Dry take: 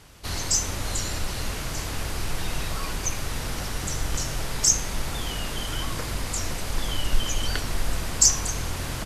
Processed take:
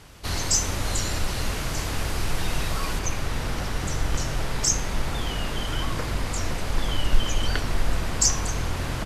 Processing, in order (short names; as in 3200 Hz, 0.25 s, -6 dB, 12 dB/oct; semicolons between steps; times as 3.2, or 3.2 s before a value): high shelf 4800 Hz -3.5 dB, from 2.99 s -10 dB; gain +3 dB